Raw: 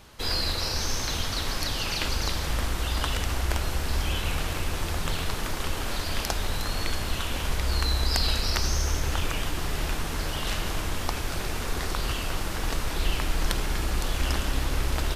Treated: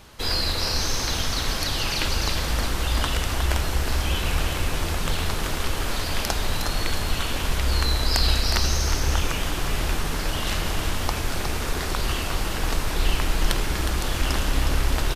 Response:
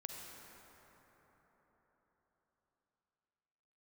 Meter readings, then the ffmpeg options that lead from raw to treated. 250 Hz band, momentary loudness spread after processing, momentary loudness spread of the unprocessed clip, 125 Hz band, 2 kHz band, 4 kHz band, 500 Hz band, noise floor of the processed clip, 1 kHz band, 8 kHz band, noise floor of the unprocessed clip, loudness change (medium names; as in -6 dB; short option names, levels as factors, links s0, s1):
+3.5 dB, 5 LU, 5 LU, +3.5 dB, +3.5 dB, +3.5 dB, +3.5 dB, -28 dBFS, +3.5 dB, +3.5 dB, -32 dBFS, +3.5 dB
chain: -af "aecho=1:1:363:0.422,volume=1.41"